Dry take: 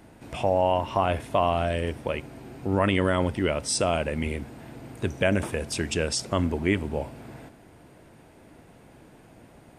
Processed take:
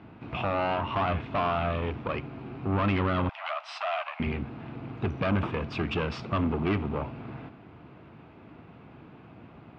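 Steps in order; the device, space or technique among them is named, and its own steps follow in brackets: guitar amplifier (valve stage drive 27 dB, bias 0.6; tone controls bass +4 dB, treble -10 dB; cabinet simulation 82–4200 Hz, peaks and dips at 550 Hz -5 dB, 1.2 kHz +7 dB, 1.8 kHz -4 dB, 2.6 kHz +4 dB); 3.29–4.20 s: steep high-pass 620 Hz 96 dB/octave; trim +4 dB

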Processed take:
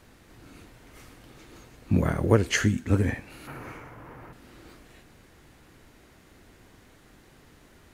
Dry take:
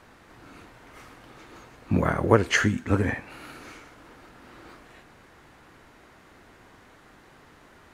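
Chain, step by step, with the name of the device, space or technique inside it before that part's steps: 3.47–4.33 s: graphic EQ 125/500/1000/2000/4000/8000 Hz +11/+5/+12/+5/-9/-8 dB; smiley-face EQ (bass shelf 92 Hz +5 dB; peaking EQ 1.1 kHz -7.5 dB 1.9 oct; treble shelf 9.5 kHz +7 dB)

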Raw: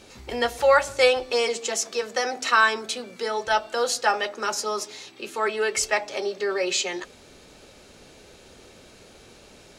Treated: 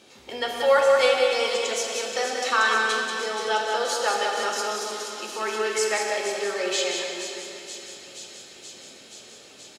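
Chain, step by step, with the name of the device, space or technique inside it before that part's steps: PA in a hall (high-pass 170 Hz 12 dB/octave; peaking EQ 3.3 kHz +4.5 dB 0.35 oct; delay 185 ms -5.5 dB; reverberation RT60 3.2 s, pre-delay 10 ms, DRR 0.5 dB); feedback echo behind a high-pass 477 ms, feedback 78%, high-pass 4 kHz, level -8 dB; trim -4.5 dB

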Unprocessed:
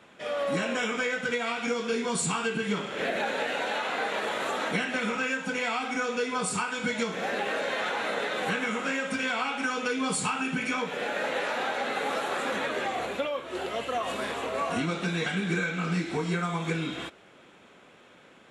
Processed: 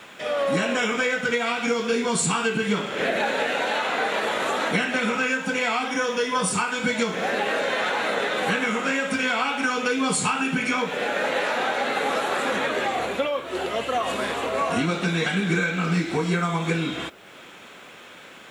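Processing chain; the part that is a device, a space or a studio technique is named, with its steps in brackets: noise-reduction cassette on a plain deck (tape noise reduction on one side only encoder only; wow and flutter 24 cents; white noise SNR 41 dB); 5.87–6.53 s: rippled EQ curve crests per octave 1.2, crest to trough 8 dB; trim +5.5 dB

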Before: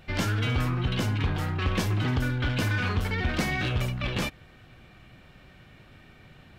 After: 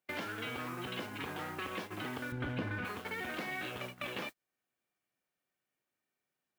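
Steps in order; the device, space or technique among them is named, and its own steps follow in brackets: baby monitor (band-pass 310–3300 Hz; compression 6:1, threshold -39 dBFS, peak gain reduction 12 dB; white noise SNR 15 dB; gate -43 dBFS, range -36 dB); 2.32–2.85 s: RIAA curve playback; trim +1.5 dB

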